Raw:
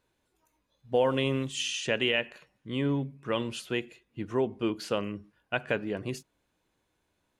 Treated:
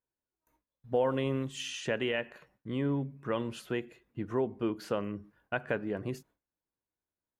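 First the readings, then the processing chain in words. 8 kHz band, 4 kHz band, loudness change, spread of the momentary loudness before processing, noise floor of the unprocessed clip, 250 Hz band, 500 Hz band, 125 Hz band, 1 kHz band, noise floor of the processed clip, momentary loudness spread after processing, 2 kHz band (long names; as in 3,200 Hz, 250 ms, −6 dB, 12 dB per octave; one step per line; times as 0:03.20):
−7.0 dB, −9.0 dB, −3.5 dB, 14 LU, −77 dBFS, −2.0 dB, −2.5 dB, −2.0 dB, −2.5 dB, below −85 dBFS, 11 LU, −5.5 dB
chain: noise gate with hold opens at −59 dBFS
flat-topped bell 4,900 Hz −8 dB 2.4 octaves
in parallel at +1 dB: downward compressor, threshold −36 dBFS, peak gain reduction 15 dB
on the sum: level −5 dB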